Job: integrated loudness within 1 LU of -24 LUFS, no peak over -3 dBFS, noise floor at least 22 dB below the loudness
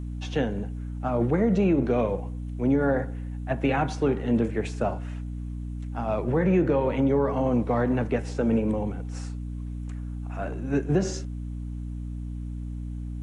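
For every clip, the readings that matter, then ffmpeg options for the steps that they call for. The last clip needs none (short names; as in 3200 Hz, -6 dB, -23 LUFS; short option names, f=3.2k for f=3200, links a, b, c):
hum 60 Hz; harmonics up to 300 Hz; hum level -31 dBFS; loudness -27.0 LUFS; peak -12.0 dBFS; loudness target -24.0 LUFS
-> -af "bandreject=f=60:t=h:w=6,bandreject=f=120:t=h:w=6,bandreject=f=180:t=h:w=6,bandreject=f=240:t=h:w=6,bandreject=f=300:t=h:w=6"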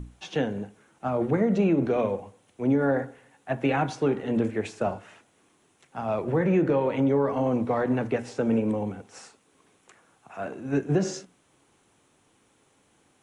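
hum none; loudness -26.5 LUFS; peak -12.5 dBFS; loudness target -24.0 LUFS
-> -af "volume=2.5dB"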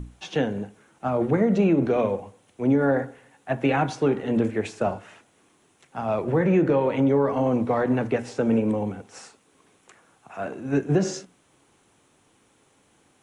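loudness -24.0 LUFS; peak -10.0 dBFS; noise floor -63 dBFS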